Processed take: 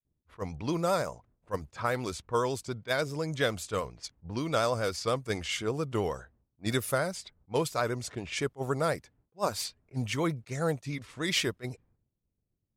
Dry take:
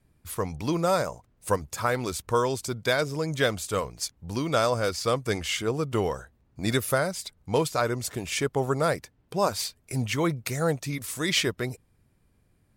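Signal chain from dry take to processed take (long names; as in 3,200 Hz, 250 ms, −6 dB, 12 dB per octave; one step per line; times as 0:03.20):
downward expander −55 dBFS
low-pass that shuts in the quiet parts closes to 590 Hz, open at −24 dBFS
pitch vibrato 10 Hz 38 cents
level that may rise only so fast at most 470 dB per second
level −4 dB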